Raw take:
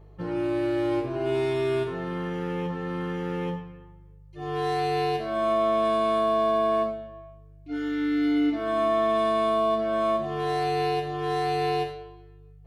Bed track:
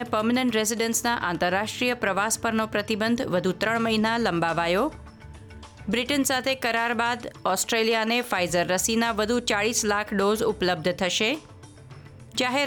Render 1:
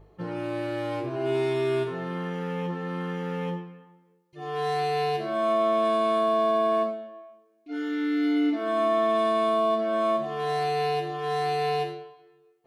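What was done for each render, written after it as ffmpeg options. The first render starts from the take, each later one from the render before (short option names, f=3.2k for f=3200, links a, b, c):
-af "bandreject=f=50:t=h:w=4,bandreject=f=100:t=h:w=4,bandreject=f=150:t=h:w=4,bandreject=f=200:t=h:w=4,bandreject=f=250:t=h:w=4,bandreject=f=300:t=h:w=4,bandreject=f=350:t=h:w=4"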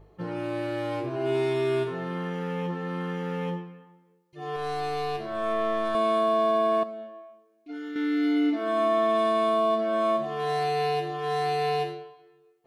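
-filter_complex "[0:a]asettb=1/sr,asplit=3[a][b][c];[a]atrim=end=4.564[d];[b]atrim=start=4.56:end=5.95,asetpts=PTS-STARTPTS,afade=t=in:d=0.004:c=qsin,afade=t=out:st=1.386:d=0.004:c=qsin,aeval=exprs='(tanh(10*val(0)+0.7)-tanh(0.7))/10':c=same[e];[c]atrim=start=5.946[f];[d][e]acrossfade=d=0.004:c1=hsin:c2=qsin[g];[g][f]acrossfade=d=0.004:c1=qsin:c2=hsin,asettb=1/sr,asplit=3[h][i][j];[h]atrim=end=6.834[k];[i]atrim=start=6.83:end=7.96,asetpts=PTS-STARTPTS,afade=t=in:d=0.004:c=qsin,afade=t=out:st=1.126:d=0.004:c=qsin,acompressor=threshold=-34dB:ratio=4:attack=3.2:release=140:knee=1:detection=peak[l];[j]atrim=start=7.956[m];[k][l]acrossfade=d=0.004:c1=hsin:c2=qsin[n];[n][m]acrossfade=d=0.004:c1=qsin:c2=hsin"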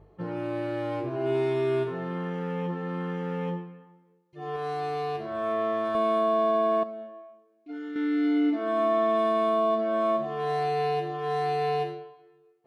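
-af "highpass=42,highshelf=f=2.8k:g=-9"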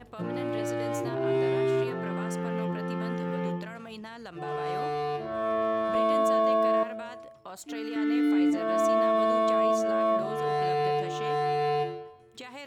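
-filter_complex "[1:a]volume=-19dB[a];[0:a][a]amix=inputs=2:normalize=0"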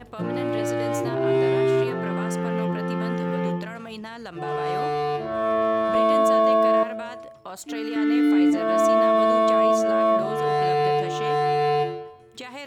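-af "volume=5.5dB"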